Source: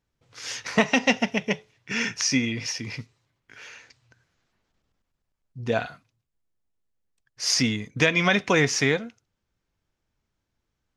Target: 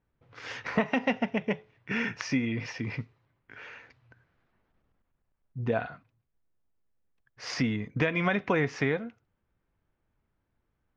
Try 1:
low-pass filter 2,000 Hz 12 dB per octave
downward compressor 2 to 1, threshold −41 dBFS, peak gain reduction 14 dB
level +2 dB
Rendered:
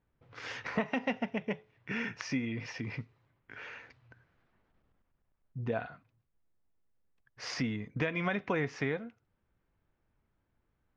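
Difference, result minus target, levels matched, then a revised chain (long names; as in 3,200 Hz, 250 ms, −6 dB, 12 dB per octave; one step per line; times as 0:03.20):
downward compressor: peak gain reduction +5.5 dB
low-pass filter 2,000 Hz 12 dB per octave
downward compressor 2 to 1, threshold −30 dBFS, peak gain reduction 8.5 dB
level +2 dB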